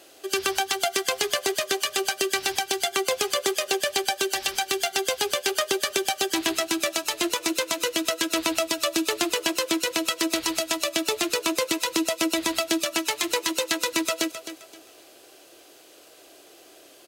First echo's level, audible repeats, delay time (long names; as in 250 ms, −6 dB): −11.5 dB, 3, 262 ms